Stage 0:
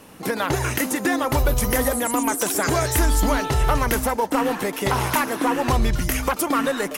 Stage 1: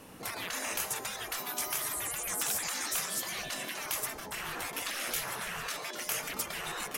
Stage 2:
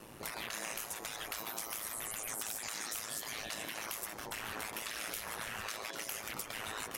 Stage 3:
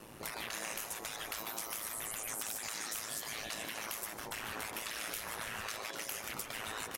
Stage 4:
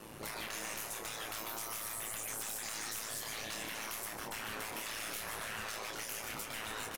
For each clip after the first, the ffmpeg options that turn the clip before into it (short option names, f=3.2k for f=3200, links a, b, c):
-af "bandreject=f=212.2:t=h:w=4,bandreject=f=424.4:t=h:w=4,bandreject=f=636.6:t=h:w=4,bandreject=f=848.8:t=h:w=4,bandreject=f=1.061k:t=h:w=4,bandreject=f=1.2732k:t=h:w=4,bandreject=f=1.4854k:t=h:w=4,bandreject=f=1.6976k:t=h:w=4,bandreject=f=1.9098k:t=h:w=4,bandreject=f=2.122k:t=h:w=4,bandreject=f=2.3342k:t=h:w=4,bandreject=f=2.5464k:t=h:w=4,bandreject=f=2.7586k:t=h:w=4,bandreject=f=2.9708k:t=h:w=4,bandreject=f=3.183k:t=h:w=4,bandreject=f=3.3952k:t=h:w=4,bandreject=f=3.6074k:t=h:w=4,bandreject=f=3.8196k:t=h:w=4,bandreject=f=4.0318k:t=h:w=4,bandreject=f=4.244k:t=h:w=4,bandreject=f=4.4562k:t=h:w=4,bandreject=f=4.6684k:t=h:w=4,bandreject=f=4.8806k:t=h:w=4,bandreject=f=5.0928k:t=h:w=4,bandreject=f=5.305k:t=h:w=4,bandreject=f=5.5172k:t=h:w=4,bandreject=f=5.7294k:t=h:w=4,afftfilt=real='re*lt(hypot(re,im),0.112)':imag='im*lt(hypot(re,im),0.112)':win_size=1024:overlap=0.75,volume=-5dB"
-af "acompressor=threshold=-36dB:ratio=6,aeval=exprs='val(0)*sin(2*PI*55*n/s)':c=same,volume=1.5dB"
-af "aecho=1:1:149:0.237"
-filter_complex "[0:a]aeval=exprs='(tanh(79.4*val(0)+0.2)-tanh(0.2))/79.4':c=same,asplit=2[a][b];[b]adelay=28,volume=-6dB[c];[a][c]amix=inputs=2:normalize=0,volume=2dB"